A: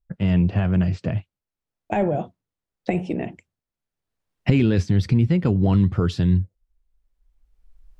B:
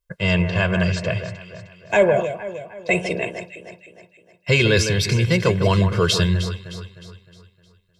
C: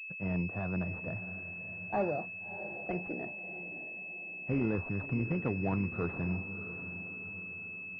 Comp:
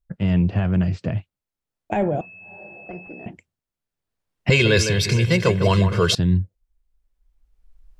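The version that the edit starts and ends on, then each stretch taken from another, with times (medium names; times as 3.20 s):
A
2.21–3.26 s: from C
4.50–6.15 s: from B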